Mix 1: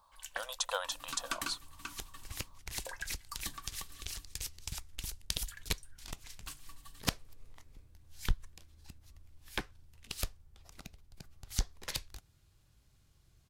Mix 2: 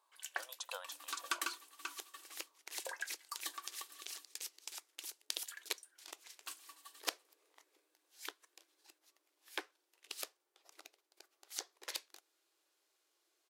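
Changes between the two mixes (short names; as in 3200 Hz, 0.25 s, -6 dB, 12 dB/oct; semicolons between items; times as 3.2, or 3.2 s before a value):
speech -11.5 dB; second sound -4.0 dB; master: add brick-wall FIR high-pass 300 Hz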